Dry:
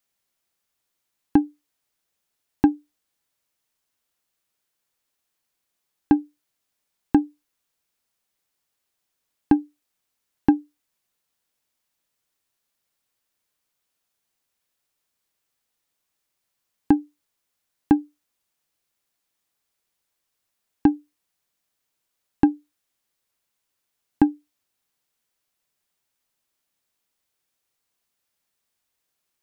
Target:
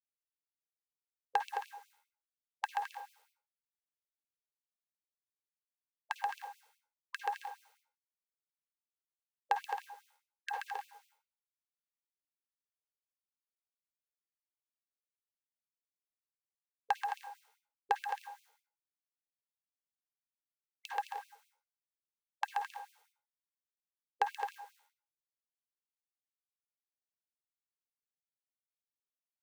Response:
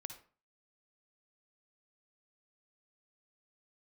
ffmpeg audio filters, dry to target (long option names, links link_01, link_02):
-filter_complex "[0:a]highpass=frequency=50:width=0.5412,highpass=frequency=50:width=1.3066,bandreject=frequency=75.6:width_type=h:width=4,bandreject=frequency=151.2:width_type=h:width=4,bandreject=frequency=226.8:width_type=h:width=4,bandreject=frequency=302.4:width_type=h:width=4,bandreject=frequency=378:width_type=h:width=4,bandreject=frequency=453.6:width_type=h:width=4,bandreject=frequency=529.2:width_type=h:width=4,bandreject=frequency=604.8:width_type=h:width=4,bandreject=frequency=680.4:width_type=h:width=4,bandreject=frequency=756:width_type=h:width=4,bandreject=frequency=831.6:width_type=h:width=4,bandreject=frequency=907.2:width_type=h:width=4,bandreject=frequency=982.8:width_type=h:width=4,bandreject=frequency=1058.4:width_type=h:width=4,bandreject=frequency=1134:width_type=h:width=4,bandreject=frequency=1209.6:width_type=h:width=4,bandreject=frequency=1285.2:width_type=h:width=4,bandreject=frequency=1360.8:width_type=h:width=4,bandreject=frequency=1436.4:width_type=h:width=4,bandreject=frequency=1512:width_type=h:width=4,bandreject=frequency=1587.6:width_type=h:width=4,bandreject=frequency=1663.2:width_type=h:width=4,bandreject=frequency=1738.8:width_type=h:width=4,bandreject=frequency=1814.4:width_type=h:width=4,bandreject=frequency=1890:width_type=h:width=4,bandreject=frequency=1965.6:width_type=h:width=4,bandreject=frequency=2041.2:width_type=h:width=4,agate=range=-33dB:threshold=-51dB:ratio=3:detection=peak,acrossover=split=100|430[link_01][link_02][link_03];[link_03]acontrast=64[link_04];[link_01][link_02][link_04]amix=inputs=3:normalize=0,acrusher=bits=8:mix=0:aa=0.000001,aecho=1:1:130|214.5|269.4|305.1|328.3:0.631|0.398|0.251|0.158|0.1[link_05];[1:a]atrim=start_sample=2205[link_06];[link_05][link_06]afir=irnorm=-1:irlink=0,afftfilt=real='re*gte(b*sr/1024,390*pow(2300/390,0.5+0.5*sin(2*PI*4.9*pts/sr)))':imag='im*gte(b*sr/1024,390*pow(2300/390,0.5+0.5*sin(2*PI*4.9*pts/sr)))':win_size=1024:overlap=0.75,volume=-2dB"